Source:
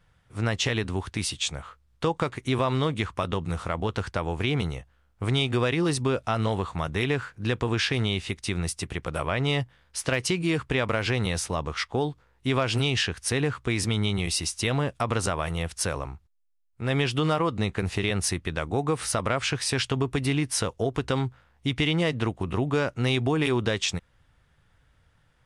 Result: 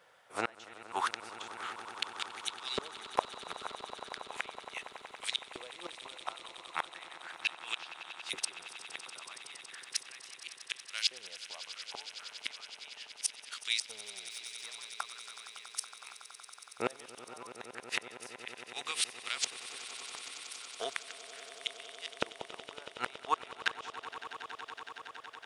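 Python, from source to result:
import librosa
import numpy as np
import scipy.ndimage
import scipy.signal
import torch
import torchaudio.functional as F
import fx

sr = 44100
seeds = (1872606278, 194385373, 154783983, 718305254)

p1 = fx.leveller(x, sr, passes=3, at=(13.84, 14.7))
p2 = fx.rider(p1, sr, range_db=10, speed_s=0.5)
p3 = p1 + (p2 * librosa.db_to_amplitude(2.0))
p4 = fx.filter_lfo_highpass(p3, sr, shape='saw_up', hz=0.36, low_hz=490.0, high_hz=4700.0, q=1.8)
p5 = fx.gate_flip(p4, sr, shuts_db=-14.0, range_db=-33)
p6 = fx.echo_swell(p5, sr, ms=93, loudest=8, wet_db=-17.0)
y = p6 * librosa.db_to_amplitude(-2.0)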